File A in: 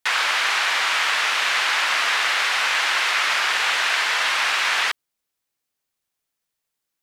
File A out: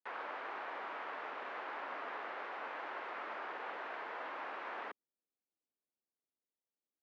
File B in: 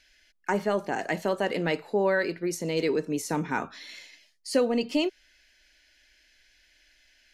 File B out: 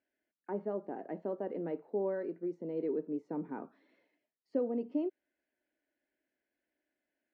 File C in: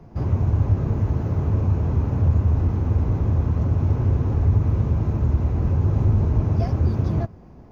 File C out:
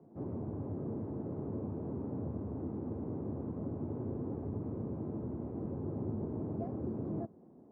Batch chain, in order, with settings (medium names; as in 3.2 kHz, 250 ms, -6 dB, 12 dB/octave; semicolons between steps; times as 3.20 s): ladder band-pass 360 Hz, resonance 20%; trim +3 dB